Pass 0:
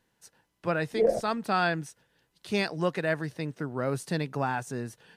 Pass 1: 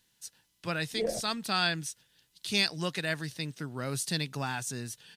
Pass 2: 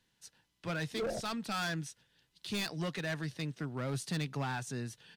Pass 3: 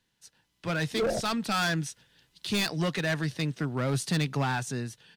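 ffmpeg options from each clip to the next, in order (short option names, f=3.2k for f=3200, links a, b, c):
-af "firequalizer=gain_entry='entry(120,0);entry(480,-7);entry(3500,11)':delay=0.05:min_phase=1,volume=-2dB"
-filter_complex "[0:a]lowpass=f=2.4k:p=1,acrossover=split=140[a][b];[b]volume=32dB,asoftclip=hard,volume=-32dB[c];[a][c]amix=inputs=2:normalize=0"
-af "dynaudnorm=f=170:g=7:m=8dB"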